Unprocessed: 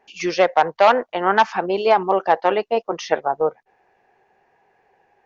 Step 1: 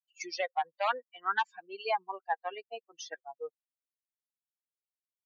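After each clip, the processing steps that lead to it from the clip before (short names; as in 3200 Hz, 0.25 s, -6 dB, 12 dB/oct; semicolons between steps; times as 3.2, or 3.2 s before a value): per-bin expansion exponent 3; limiter -11.5 dBFS, peak gain reduction 6.5 dB; HPF 900 Hz 12 dB/oct; gain -4 dB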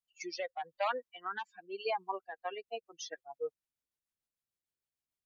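low shelf 220 Hz +10 dB; limiter -25.5 dBFS, peak gain reduction 8 dB; rotary speaker horn 0.8 Hz, later 6.7 Hz, at 1.99; gain +2 dB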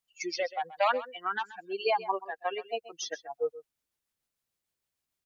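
echo 0.13 s -16 dB; gain +7 dB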